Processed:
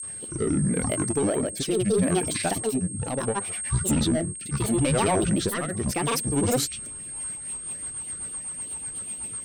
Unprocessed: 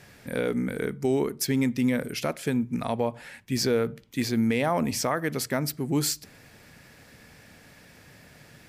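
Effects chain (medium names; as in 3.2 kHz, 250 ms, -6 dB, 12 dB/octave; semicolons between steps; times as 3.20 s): tape speed -8%; in parallel at -9.5 dB: sine folder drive 8 dB, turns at -13 dBFS; on the sum: granulator, grains 24 per s, pitch spread up and down by 12 st; whistle 8.5 kHz -29 dBFS; rotary cabinet horn 0.75 Hz, later 8 Hz, at 6.97 s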